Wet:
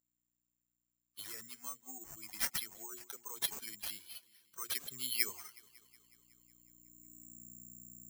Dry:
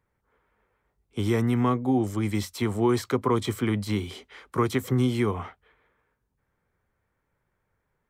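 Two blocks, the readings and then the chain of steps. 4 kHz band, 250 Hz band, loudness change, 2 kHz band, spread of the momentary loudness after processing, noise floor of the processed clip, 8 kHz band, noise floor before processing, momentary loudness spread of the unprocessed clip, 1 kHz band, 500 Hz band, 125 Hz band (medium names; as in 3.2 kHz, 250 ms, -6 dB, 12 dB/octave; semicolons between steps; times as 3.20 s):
-4.0 dB, -33.5 dB, -13.5 dB, -9.5 dB, 18 LU, under -85 dBFS, +2.0 dB, -77 dBFS, 11 LU, -22.5 dB, -31.0 dB, -36.5 dB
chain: expander on every frequency bin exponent 2; hum notches 60/120/180/240/300/360 Hz; time-frequency box 2.82–3.07 s, 1.7–12 kHz -23 dB; peak limiter -21 dBFS, peak gain reduction 5.5 dB; hum 60 Hz, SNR 22 dB; band-pass sweep 5.7 kHz -> 220 Hz, 4.55–7.45 s; feedback echo behind a low-pass 184 ms, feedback 68%, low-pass 3.6 kHz, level -22 dB; careless resampling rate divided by 6×, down none, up zero stuff; trim +4 dB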